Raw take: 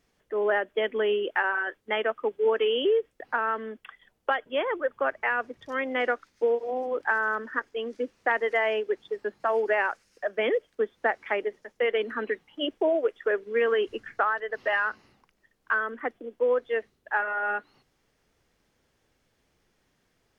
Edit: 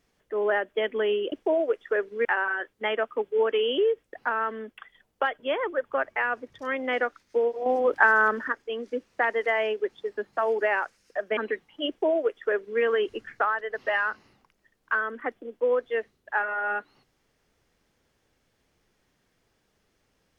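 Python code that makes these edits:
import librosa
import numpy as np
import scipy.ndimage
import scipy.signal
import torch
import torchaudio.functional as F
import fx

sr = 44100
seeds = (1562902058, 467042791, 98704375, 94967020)

y = fx.edit(x, sr, fx.clip_gain(start_s=6.73, length_s=0.82, db=6.5),
    fx.cut(start_s=10.44, length_s=1.72),
    fx.duplicate(start_s=12.67, length_s=0.93, to_s=1.32), tone=tone)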